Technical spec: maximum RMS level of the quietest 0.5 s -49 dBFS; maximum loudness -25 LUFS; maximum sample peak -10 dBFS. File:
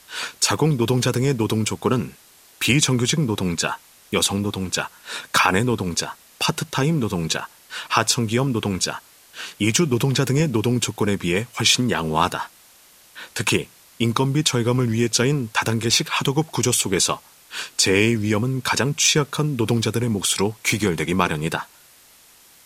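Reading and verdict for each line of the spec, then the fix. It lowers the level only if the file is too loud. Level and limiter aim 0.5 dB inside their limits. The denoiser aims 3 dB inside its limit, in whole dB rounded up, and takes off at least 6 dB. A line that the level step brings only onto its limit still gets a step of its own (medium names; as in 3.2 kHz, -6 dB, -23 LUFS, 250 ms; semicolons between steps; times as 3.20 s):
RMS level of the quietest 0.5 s -51 dBFS: pass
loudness -21.0 LUFS: fail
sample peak -2.5 dBFS: fail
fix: trim -4.5 dB; peak limiter -10.5 dBFS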